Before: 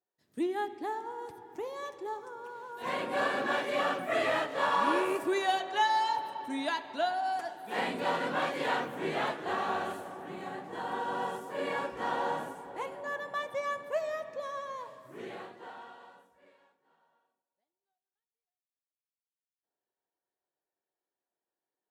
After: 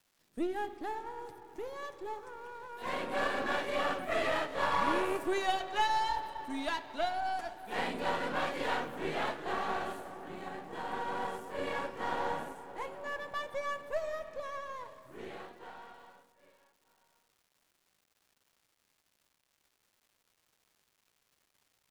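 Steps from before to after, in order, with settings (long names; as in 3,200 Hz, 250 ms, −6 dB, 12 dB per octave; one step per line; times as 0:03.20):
gain on one half-wave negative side −7 dB
surface crackle 500 per second −59 dBFS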